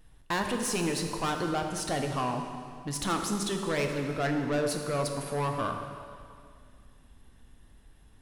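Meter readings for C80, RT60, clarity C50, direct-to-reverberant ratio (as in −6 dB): 6.0 dB, 2.2 s, 5.0 dB, 3.0 dB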